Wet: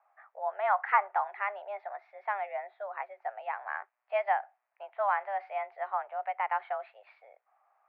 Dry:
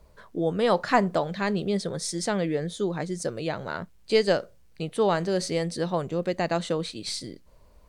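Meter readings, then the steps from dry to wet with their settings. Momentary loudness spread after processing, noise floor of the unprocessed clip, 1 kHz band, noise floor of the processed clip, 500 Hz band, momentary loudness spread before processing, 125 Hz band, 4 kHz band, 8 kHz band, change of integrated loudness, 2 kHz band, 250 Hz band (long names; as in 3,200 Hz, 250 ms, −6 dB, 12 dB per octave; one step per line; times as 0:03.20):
13 LU, −55 dBFS, +1.0 dB, −83 dBFS, −11.0 dB, 11 LU, below −40 dB, below −20 dB, below −40 dB, −6.0 dB, −2.5 dB, below −40 dB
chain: single-sideband voice off tune +200 Hz 510–2,100 Hz
one half of a high-frequency compander decoder only
level −2.5 dB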